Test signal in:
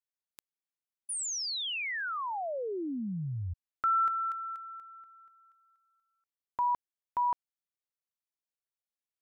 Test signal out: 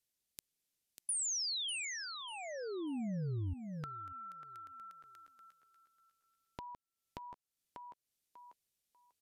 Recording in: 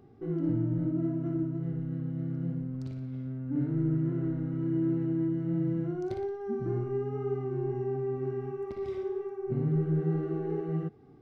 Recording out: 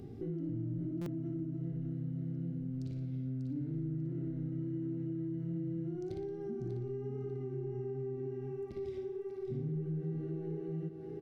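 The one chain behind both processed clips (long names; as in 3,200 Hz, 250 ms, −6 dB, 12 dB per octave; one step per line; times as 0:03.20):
in parallel at +1.5 dB: brickwall limiter −29.5 dBFS
on the sum: feedback echo with a high-pass in the loop 593 ms, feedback 20%, high-pass 300 Hz, level −7.5 dB
downward compressor 3 to 1, threshold −44 dBFS
parametric band 1,100 Hz −14.5 dB 1.7 octaves
downsampling to 32,000 Hz
buffer that repeats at 0:01.01, samples 256, times 8
level +4.5 dB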